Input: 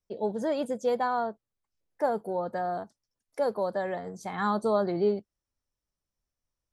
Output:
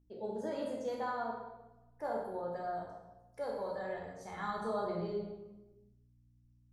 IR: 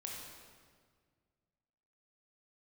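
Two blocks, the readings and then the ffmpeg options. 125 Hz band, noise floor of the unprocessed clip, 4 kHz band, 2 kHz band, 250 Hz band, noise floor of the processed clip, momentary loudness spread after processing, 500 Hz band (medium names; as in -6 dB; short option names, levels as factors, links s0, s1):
-7.5 dB, under -85 dBFS, -8.0 dB, -7.5 dB, -10.0 dB, -67 dBFS, 14 LU, -9.5 dB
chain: -filter_complex "[0:a]asubboost=boost=10:cutoff=78,aeval=exprs='val(0)+0.00178*(sin(2*PI*60*n/s)+sin(2*PI*2*60*n/s)/2+sin(2*PI*3*60*n/s)/3+sin(2*PI*4*60*n/s)/4+sin(2*PI*5*60*n/s)/5)':c=same[s0];[1:a]atrim=start_sample=2205,asetrate=83790,aresample=44100[s1];[s0][s1]afir=irnorm=-1:irlink=0,volume=0.891"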